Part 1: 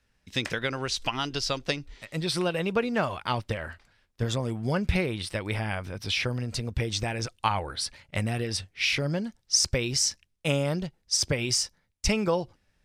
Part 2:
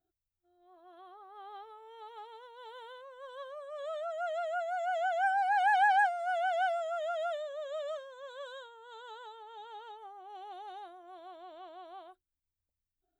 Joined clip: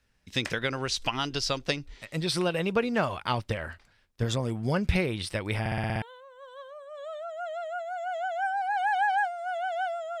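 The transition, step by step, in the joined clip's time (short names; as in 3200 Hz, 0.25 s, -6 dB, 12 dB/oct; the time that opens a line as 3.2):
part 1
5.6 stutter in place 0.06 s, 7 plays
6.02 switch to part 2 from 2.83 s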